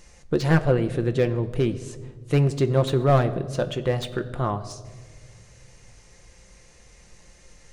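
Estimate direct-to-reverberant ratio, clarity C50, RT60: 7.0 dB, 14.5 dB, 1.6 s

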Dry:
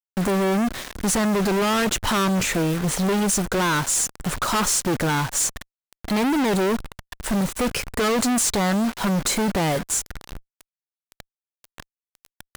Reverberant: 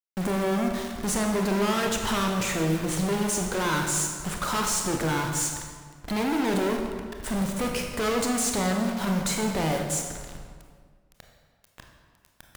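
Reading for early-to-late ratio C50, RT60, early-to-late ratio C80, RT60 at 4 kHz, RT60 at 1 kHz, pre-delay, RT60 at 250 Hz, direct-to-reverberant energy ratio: 4.0 dB, 1.7 s, 5.5 dB, 1.2 s, 1.7 s, 24 ms, 1.9 s, 2.0 dB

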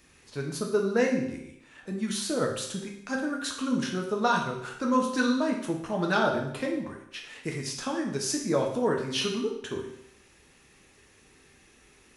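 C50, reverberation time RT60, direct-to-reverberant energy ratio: 5.5 dB, 0.75 s, 0.0 dB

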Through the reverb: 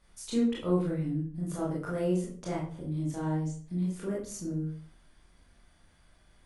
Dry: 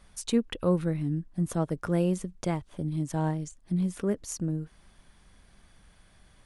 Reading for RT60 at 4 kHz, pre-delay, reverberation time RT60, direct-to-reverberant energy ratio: 0.35 s, 20 ms, 0.45 s, -5.5 dB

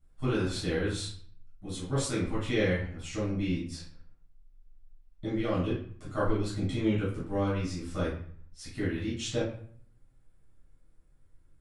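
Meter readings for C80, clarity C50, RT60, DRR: 8.5 dB, 3.0 dB, 0.55 s, -9.5 dB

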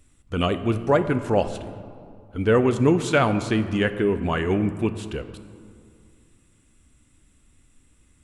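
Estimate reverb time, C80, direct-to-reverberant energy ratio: 2.3 s, 13.0 dB, 10.0 dB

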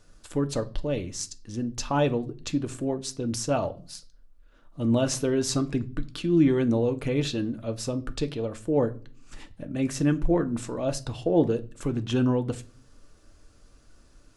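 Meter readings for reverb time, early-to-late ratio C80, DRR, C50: 0.40 s, 24.5 dB, 8.0 dB, 19.5 dB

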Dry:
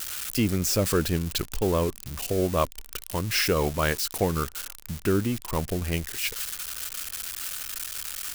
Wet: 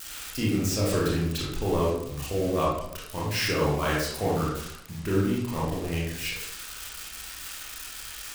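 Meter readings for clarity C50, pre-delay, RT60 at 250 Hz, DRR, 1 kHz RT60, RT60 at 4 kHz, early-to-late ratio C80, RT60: 0.5 dB, 24 ms, 0.90 s, -6.5 dB, 0.80 s, 0.50 s, 4.0 dB, 0.80 s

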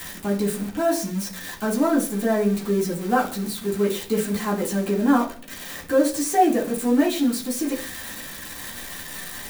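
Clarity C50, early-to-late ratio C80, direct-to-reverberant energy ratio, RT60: 10.0 dB, 15.5 dB, -6.5 dB, 0.45 s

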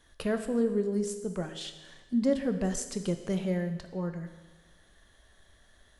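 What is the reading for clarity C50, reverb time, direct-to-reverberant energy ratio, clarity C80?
9.5 dB, 1.3 s, 7.5 dB, 11.5 dB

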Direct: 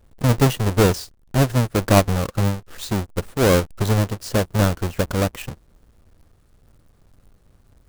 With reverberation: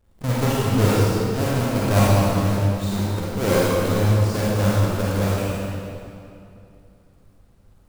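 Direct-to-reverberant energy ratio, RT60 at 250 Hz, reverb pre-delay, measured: -7.5 dB, 2.9 s, 33 ms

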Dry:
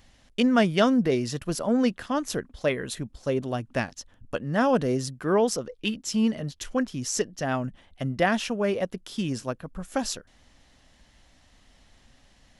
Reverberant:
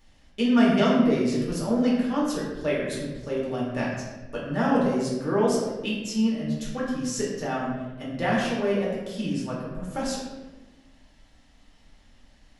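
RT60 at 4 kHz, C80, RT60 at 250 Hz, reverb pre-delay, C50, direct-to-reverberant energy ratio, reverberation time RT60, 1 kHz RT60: 0.75 s, 3.5 dB, 1.6 s, 3 ms, 1.0 dB, -6.0 dB, 1.2 s, 1.0 s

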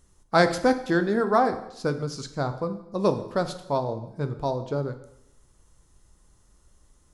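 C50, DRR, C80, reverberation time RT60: 12.0 dB, 8.0 dB, 14.0 dB, 0.80 s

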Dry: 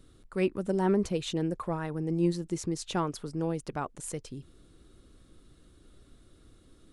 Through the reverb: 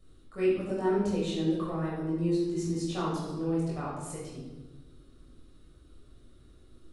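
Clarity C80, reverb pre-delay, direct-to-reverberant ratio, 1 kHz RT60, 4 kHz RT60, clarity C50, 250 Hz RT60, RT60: 3.0 dB, 19 ms, -7.0 dB, 1.0 s, 0.90 s, 0.5 dB, 1.6 s, 1.2 s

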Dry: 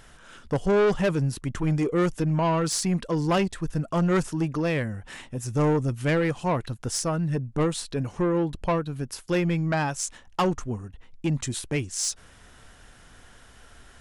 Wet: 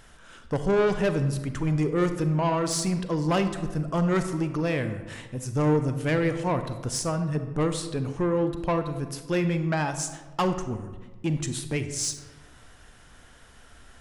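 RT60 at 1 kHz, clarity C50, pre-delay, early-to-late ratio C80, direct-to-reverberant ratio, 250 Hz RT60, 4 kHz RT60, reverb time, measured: 1.2 s, 9.5 dB, 34 ms, 11.0 dB, 8.5 dB, 1.5 s, 0.70 s, 1.3 s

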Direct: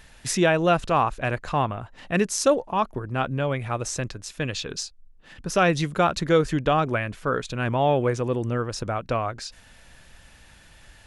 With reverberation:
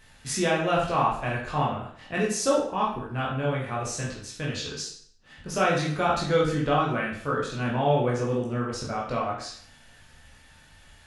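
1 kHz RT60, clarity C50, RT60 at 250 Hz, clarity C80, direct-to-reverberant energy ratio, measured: 0.60 s, 4.0 dB, 0.60 s, 8.0 dB, -4.5 dB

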